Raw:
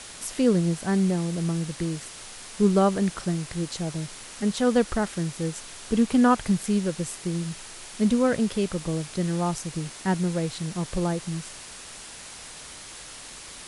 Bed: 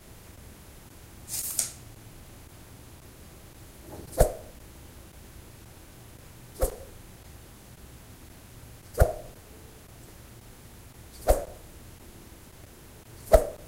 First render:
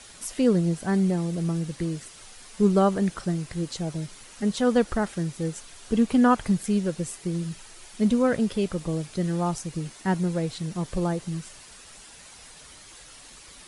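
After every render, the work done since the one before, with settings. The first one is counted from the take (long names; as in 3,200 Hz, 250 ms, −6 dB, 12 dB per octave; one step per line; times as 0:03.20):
broadband denoise 8 dB, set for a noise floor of −42 dBFS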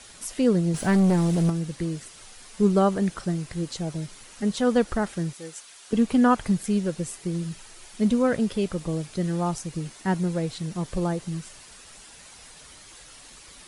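0:00.74–0:01.50: leveller curve on the samples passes 2
0:05.33–0:05.93: high-pass filter 1,000 Hz 6 dB per octave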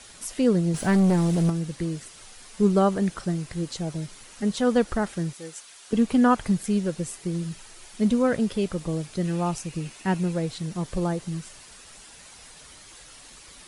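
0:09.25–0:10.33: parametric band 2,600 Hz +9 dB 0.27 octaves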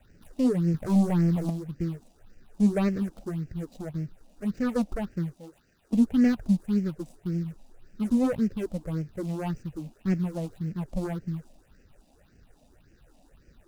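running median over 41 samples
all-pass phaser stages 6, 1.8 Hz, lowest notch 100–1,000 Hz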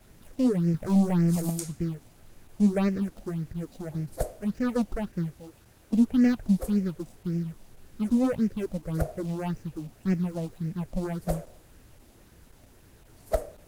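mix in bed −9 dB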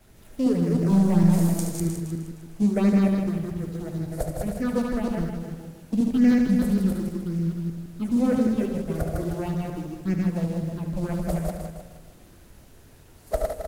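feedback delay that plays each chunk backwards 154 ms, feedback 47%, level −2.5 dB
loudspeakers that aren't time-aligned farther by 25 metres −8 dB, 55 metres −7 dB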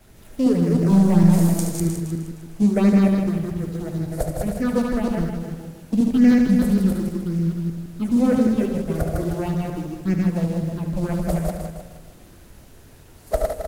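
level +4 dB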